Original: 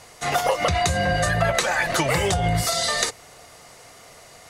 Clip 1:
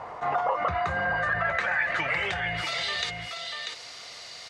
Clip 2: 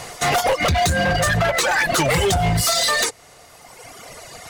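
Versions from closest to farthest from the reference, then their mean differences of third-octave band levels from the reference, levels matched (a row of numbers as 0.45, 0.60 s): 2, 1; 3.5, 9.0 dB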